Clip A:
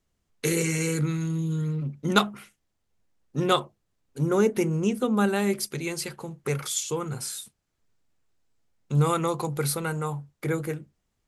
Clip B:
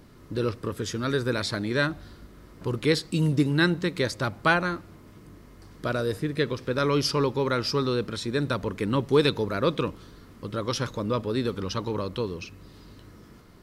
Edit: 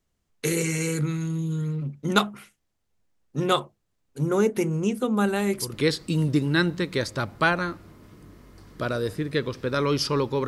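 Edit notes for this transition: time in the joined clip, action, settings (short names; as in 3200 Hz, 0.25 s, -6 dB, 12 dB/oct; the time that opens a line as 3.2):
clip A
5.26 add clip B from 2.3 s 0.47 s -8 dB
5.73 switch to clip B from 2.77 s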